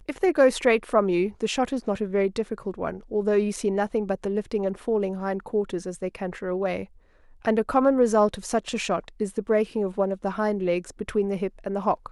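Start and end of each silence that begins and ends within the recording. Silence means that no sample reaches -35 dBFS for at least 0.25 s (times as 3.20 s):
6.84–7.45 s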